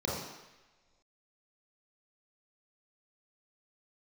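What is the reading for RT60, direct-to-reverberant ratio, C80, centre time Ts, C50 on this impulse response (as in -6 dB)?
not exponential, -5.5 dB, 3.5 dB, 70 ms, 0.5 dB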